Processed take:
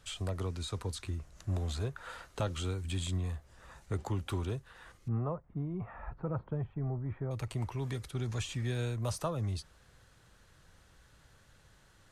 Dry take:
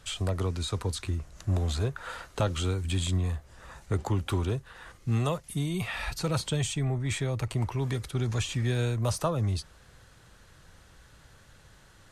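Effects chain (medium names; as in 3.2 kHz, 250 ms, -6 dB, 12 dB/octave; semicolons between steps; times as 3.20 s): 5.08–7.31 s: low-pass 1.3 kHz 24 dB/octave; trim -6.5 dB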